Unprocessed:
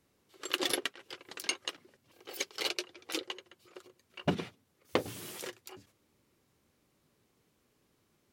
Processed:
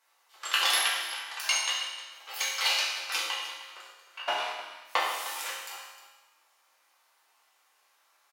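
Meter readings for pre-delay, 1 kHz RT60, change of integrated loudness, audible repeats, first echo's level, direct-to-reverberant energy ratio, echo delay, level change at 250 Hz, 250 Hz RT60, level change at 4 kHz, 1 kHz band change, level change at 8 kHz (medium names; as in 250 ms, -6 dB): 5 ms, 1.2 s, +7.5 dB, 1, -14.0 dB, -7.0 dB, 307 ms, -18.0 dB, 1.3 s, +9.5 dB, +11.0 dB, +9.0 dB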